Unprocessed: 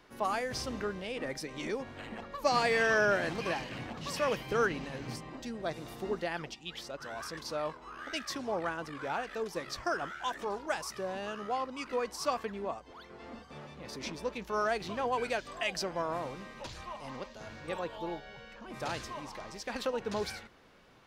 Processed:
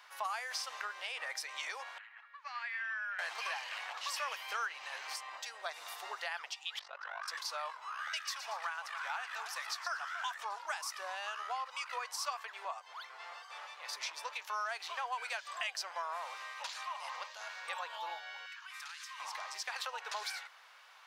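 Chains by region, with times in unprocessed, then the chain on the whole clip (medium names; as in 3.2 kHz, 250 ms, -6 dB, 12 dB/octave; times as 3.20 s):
1.98–3.19 s: ladder band-pass 2.1 kHz, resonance 40% + tilt EQ -3 dB/octave
6.79–7.28 s: low-pass 2.8 kHz + AM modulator 49 Hz, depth 75%
8.01–10.35 s: high-pass 750 Hz + two-band feedback delay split 2.4 kHz, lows 284 ms, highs 116 ms, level -12.5 dB
11.66–12.65 s: steep high-pass 260 Hz + tape noise reduction on one side only encoder only
18.46–19.20 s: high-pass 1.3 kHz 24 dB/octave + compression 12:1, threshold -48 dBFS
whole clip: inverse Chebyshev high-pass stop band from 190 Hz, stop band 70 dB; compression 3:1, threshold -43 dBFS; trim +5.5 dB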